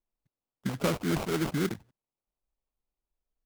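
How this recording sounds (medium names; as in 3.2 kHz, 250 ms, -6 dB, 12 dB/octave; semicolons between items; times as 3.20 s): phasing stages 8, 3.8 Hz, lowest notch 370–4800 Hz; aliases and images of a low sample rate 1.8 kHz, jitter 20%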